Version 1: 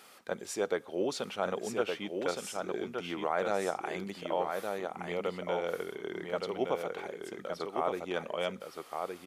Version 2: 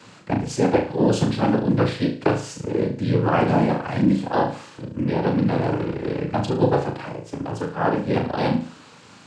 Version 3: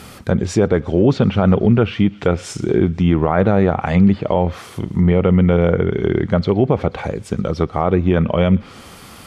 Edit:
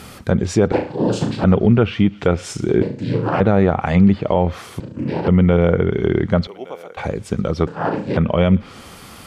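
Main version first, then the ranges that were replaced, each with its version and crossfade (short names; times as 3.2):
3
0.72–1.44 from 2
2.82–3.4 from 2
4.8–5.28 from 2
6.47–6.97 from 1
7.67–8.17 from 2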